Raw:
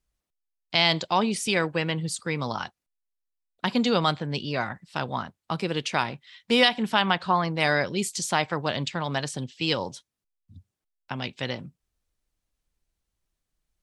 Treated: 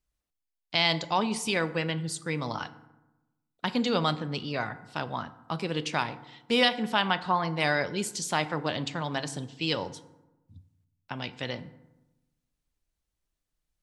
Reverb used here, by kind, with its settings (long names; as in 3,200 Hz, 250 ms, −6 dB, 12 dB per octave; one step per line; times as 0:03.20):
feedback delay network reverb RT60 1 s, low-frequency decay 1.25×, high-frequency decay 0.5×, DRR 12 dB
level −3.5 dB